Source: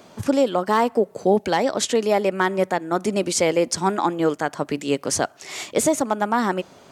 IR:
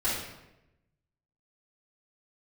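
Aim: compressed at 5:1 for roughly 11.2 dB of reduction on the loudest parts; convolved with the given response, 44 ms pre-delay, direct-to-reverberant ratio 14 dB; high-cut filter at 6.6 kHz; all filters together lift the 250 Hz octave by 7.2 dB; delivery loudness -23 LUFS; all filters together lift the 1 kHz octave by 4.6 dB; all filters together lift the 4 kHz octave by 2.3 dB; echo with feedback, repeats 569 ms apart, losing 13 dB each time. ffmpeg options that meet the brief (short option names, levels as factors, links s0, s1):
-filter_complex "[0:a]lowpass=6600,equalizer=f=250:t=o:g=9,equalizer=f=1000:t=o:g=5,equalizer=f=4000:t=o:g=3.5,acompressor=threshold=0.0891:ratio=5,aecho=1:1:569|1138|1707:0.224|0.0493|0.0108,asplit=2[s0][s1];[1:a]atrim=start_sample=2205,adelay=44[s2];[s1][s2]afir=irnorm=-1:irlink=0,volume=0.0668[s3];[s0][s3]amix=inputs=2:normalize=0,volume=1.33"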